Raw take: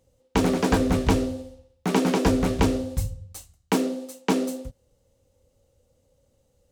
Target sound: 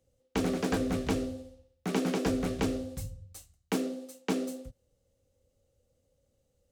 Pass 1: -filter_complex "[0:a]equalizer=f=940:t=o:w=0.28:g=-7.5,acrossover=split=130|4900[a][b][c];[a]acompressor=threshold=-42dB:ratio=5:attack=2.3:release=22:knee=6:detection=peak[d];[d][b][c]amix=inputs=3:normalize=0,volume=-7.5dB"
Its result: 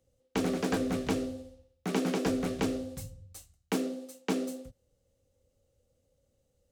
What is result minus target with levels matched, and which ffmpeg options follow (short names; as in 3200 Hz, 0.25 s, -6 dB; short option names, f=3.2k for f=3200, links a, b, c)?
compressor: peak gain reduction +9 dB
-filter_complex "[0:a]equalizer=f=940:t=o:w=0.28:g=-7.5,acrossover=split=130|4900[a][b][c];[a]acompressor=threshold=-31dB:ratio=5:attack=2.3:release=22:knee=6:detection=peak[d];[d][b][c]amix=inputs=3:normalize=0,volume=-7.5dB"